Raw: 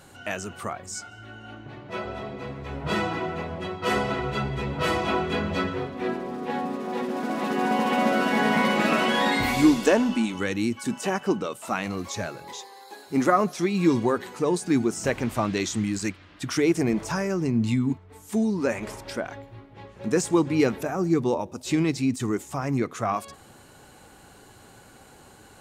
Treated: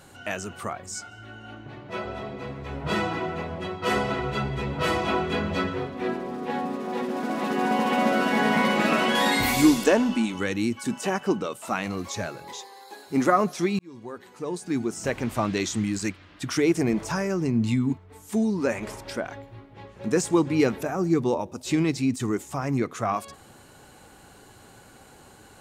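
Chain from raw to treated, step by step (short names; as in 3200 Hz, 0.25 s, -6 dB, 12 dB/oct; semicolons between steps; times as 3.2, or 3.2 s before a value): 9.15–9.84 high shelf 6100 Hz +11 dB; 13.79–15.45 fade in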